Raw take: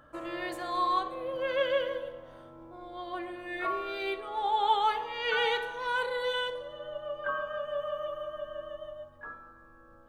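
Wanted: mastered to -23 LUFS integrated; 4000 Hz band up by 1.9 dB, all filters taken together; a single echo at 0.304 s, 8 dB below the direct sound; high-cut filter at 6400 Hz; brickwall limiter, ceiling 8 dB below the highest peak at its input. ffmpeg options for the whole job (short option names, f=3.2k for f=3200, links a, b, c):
-af "lowpass=6.4k,equalizer=f=4k:t=o:g=3,alimiter=limit=-23.5dB:level=0:latency=1,aecho=1:1:304:0.398,volume=10.5dB"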